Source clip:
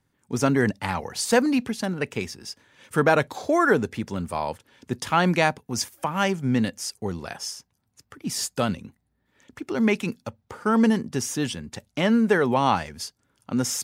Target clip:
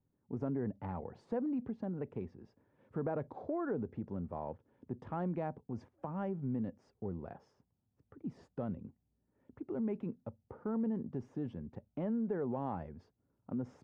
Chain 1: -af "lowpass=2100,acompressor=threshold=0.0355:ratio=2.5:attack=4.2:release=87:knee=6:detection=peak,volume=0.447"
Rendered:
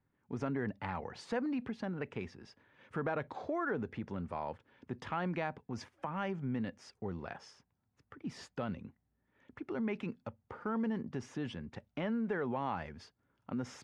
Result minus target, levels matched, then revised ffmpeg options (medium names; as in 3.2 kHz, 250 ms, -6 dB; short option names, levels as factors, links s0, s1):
2 kHz band +12.5 dB
-af "lowpass=640,acompressor=threshold=0.0355:ratio=2.5:attack=4.2:release=87:knee=6:detection=peak,volume=0.447"